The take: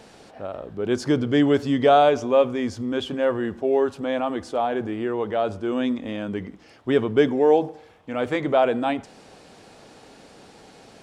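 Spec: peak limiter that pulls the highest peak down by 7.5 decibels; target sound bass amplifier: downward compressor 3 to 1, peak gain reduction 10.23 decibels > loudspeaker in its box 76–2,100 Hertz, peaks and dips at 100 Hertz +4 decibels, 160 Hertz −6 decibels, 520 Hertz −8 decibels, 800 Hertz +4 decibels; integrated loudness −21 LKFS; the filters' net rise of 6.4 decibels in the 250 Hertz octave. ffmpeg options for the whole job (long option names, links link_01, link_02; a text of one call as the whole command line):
ffmpeg -i in.wav -af "equalizer=frequency=250:width_type=o:gain=8,alimiter=limit=-11dB:level=0:latency=1,acompressor=threshold=-28dB:ratio=3,highpass=frequency=76:width=0.5412,highpass=frequency=76:width=1.3066,equalizer=frequency=100:width_type=q:width=4:gain=4,equalizer=frequency=160:width_type=q:width=4:gain=-6,equalizer=frequency=520:width_type=q:width=4:gain=-8,equalizer=frequency=800:width_type=q:width=4:gain=4,lowpass=frequency=2100:width=0.5412,lowpass=frequency=2100:width=1.3066,volume=10dB" out.wav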